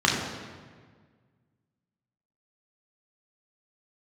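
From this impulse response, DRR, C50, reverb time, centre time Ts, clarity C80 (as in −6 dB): −3.0 dB, 2.5 dB, 1.6 s, 66 ms, 4.5 dB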